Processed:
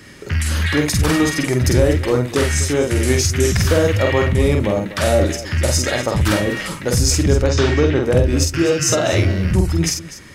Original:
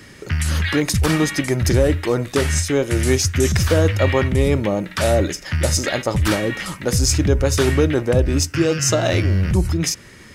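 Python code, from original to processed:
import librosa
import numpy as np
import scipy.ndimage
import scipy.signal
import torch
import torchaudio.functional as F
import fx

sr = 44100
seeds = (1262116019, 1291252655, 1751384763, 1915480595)

p1 = fx.lowpass(x, sr, hz=5900.0, slope=24, at=(7.44, 8.03))
y = p1 + fx.echo_multitap(p1, sr, ms=(48, 247), db=(-3.5, -14.5), dry=0)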